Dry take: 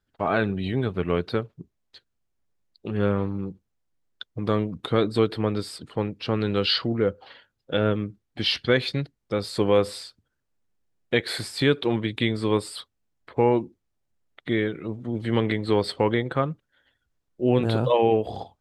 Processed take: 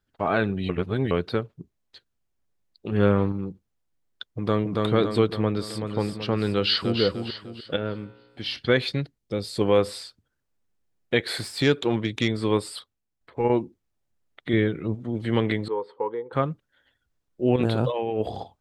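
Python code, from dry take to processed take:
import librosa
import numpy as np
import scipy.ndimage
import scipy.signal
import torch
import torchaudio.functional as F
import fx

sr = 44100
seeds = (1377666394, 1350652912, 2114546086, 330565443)

y = fx.echo_throw(x, sr, start_s=4.31, length_s=0.43, ms=280, feedback_pct=55, wet_db=-2.0)
y = fx.echo_throw(y, sr, start_s=5.3, length_s=0.57, ms=380, feedback_pct=55, wet_db=-7.0)
y = fx.echo_throw(y, sr, start_s=6.52, length_s=0.48, ms=300, feedback_pct=40, wet_db=-6.5)
y = fx.comb_fb(y, sr, f0_hz=60.0, decay_s=1.6, harmonics='all', damping=0.0, mix_pct=60, at=(7.76, 8.59))
y = fx.peak_eq(y, sr, hz=1200.0, db=-9.5, octaves=1.7, at=(9.18, 9.61))
y = fx.self_delay(y, sr, depth_ms=0.058, at=(11.36, 12.28))
y = fx.level_steps(y, sr, step_db=9, at=(12.79, 13.5))
y = fx.low_shelf(y, sr, hz=210.0, db=8.5, at=(14.53, 14.95))
y = fx.double_bandpass(y, sr, hz=660.0, octaves=0.95, at=(15.68, 16.33))
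y = fx.over_compress(y, sr, threshold_db=-25.0, ratio=-1.0, at=(17.56, 18.29))
y = fx.edit(y, sr, fx.reverse_span(start_s=0.69, length_s=0.42),
    fx.clip_gain(start_s=2.92, length_s=0.4, db=3.5), tone=tone)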